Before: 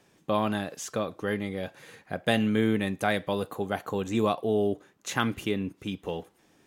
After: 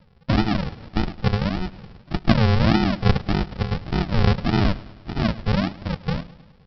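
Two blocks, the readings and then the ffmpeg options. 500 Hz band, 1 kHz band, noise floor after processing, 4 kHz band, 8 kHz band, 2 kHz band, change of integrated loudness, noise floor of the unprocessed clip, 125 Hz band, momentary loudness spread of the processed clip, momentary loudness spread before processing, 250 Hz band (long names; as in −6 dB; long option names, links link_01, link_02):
−0.5 dB, +4.0 dB, −53 dBFS, +6.5 dB, below −10 dB, +3.0 dB, +6.5 dB, −64 dBFS, +14.5 dB, 11 LU, 11 LU, +6.5 dB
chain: -af "aecho=1:1:5.7:0.49,aresample=11025,acrusher=samples=28:mix=1:aa=0.000001:lfo=1:lforange=16.8:lforate=1.7,aresample=44100,aecho=1:1:105|210|315|420|525:0.112|0.0651|0.0377|0.0219|0.0127,volume=7dB"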